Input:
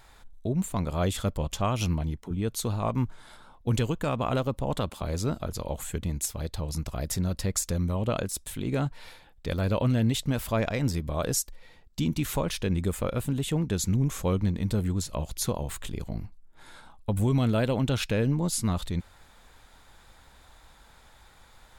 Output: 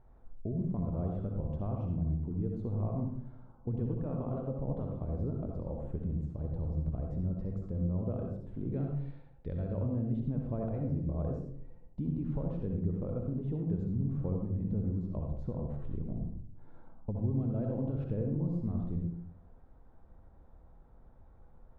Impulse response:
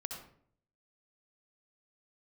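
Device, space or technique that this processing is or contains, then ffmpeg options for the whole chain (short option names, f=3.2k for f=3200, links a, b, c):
television next door: -filter_complex "[0:a]asettb=1/sr,asplit=3[a][b][c];[a]atrim=end=8.724[d];[b]atrim=start=8.72:end=9.73,asetpts=PTS-STARTPTS,afade=t=in:d=0.004:c=qsin,afade=t=out:st=1.006:d=0.004:c=qsin,equalizer=f=250:t=o:w=1:g=-4,equalizer=f=1k:t=o:w=1:g=-4,equalizer=f=2k:t=o:w=1:g=6,equalizer=f=4k:t=o:w=1:g=9[e];[c]atrim=start=9.726[f];[d][e]acrossfade=d=0.004:c1=hsin:c2=qsin[g];[g][f]acrossfade=d=0.004:c1=qsin:c2=hsin,acompressor=threshold=-30dB:ratio=3,lowpass=510[h];[1:a]atrim=start_sample=2205[i];[h][i]afir=irnorm=-1:irlink=0"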